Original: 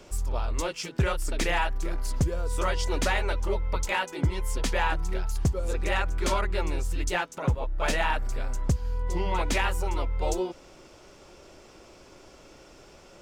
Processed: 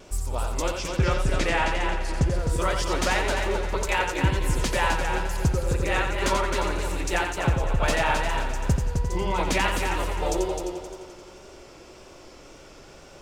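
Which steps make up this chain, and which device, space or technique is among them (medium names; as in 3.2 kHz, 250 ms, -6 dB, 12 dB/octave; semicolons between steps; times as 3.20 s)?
0.68–2.34 s: distance through air 54 m; multi-head tape echo (multi-head delay 87 ms, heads first and third, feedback 52%, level -6 dB; wow and flutter 47 cents); trim +2 dB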